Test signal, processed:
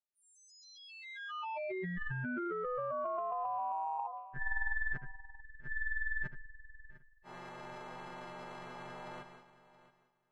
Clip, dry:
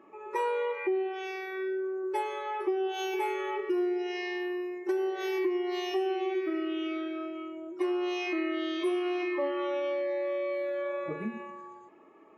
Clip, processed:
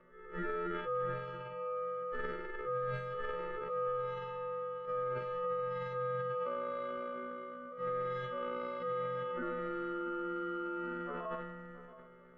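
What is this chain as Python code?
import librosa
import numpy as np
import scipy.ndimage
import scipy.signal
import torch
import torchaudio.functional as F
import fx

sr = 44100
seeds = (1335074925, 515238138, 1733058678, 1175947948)

p1 = fx.freq_snap(x, sr, grid_st=3)
p2 = fx.rider(p1, sr, range_db=4, speed_s=2.0)
p3 = p1 + F.gain(torch.from_numpy(p2), 0.0).numpy()
p4 = p3 * np.sin(2.0 * np.pi * 870.0 * np.arange(len(p3)) / sr)
p5 = scipy.signal.sosfilt(scipy.signal.butter(2, 1300.0, 'lowpass', fs=sr, output='sos'), p4)
p6 = p5 + fx.echo_feedback(p5, sr, ms=674, feedback_pct=15, wet_db=-17.0, dry=0)
p7 = fx.transient(p6, sr, attack_db=-5, sustain_db=10)
y = F.gain(torch.from_numpy(p7), -9.0).numpy()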